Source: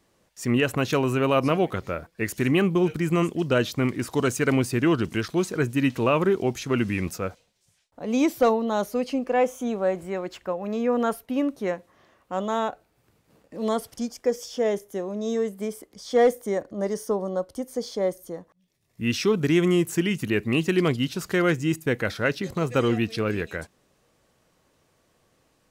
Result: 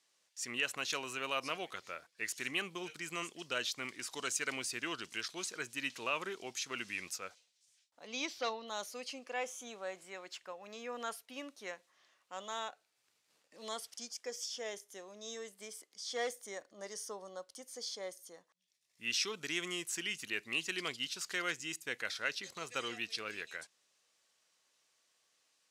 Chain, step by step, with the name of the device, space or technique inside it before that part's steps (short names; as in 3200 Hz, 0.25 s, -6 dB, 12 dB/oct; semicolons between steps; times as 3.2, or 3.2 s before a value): 8.07–8.67 resonant high shelf 6700 Hz -12.5 dB, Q 1.5; piezo pickup straight into a mixer (LPF 6000 Hz 12 dB/oct; differentiator); gain +3 dB